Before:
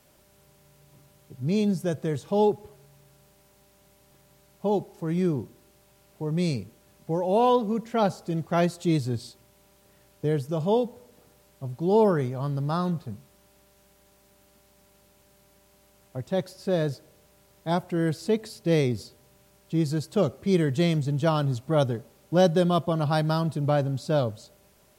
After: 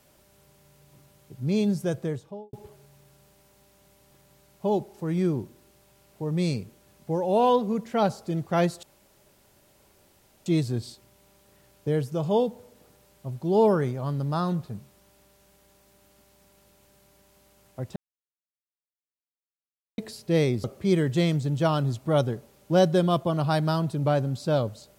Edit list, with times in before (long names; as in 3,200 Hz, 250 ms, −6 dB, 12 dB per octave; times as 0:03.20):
0:01.93–0:02.53: fade out and dull
0:08.83: splice in room tone 1.63 s
0:16.33–0:18.35: silence
0:19.01–0:20.26: remove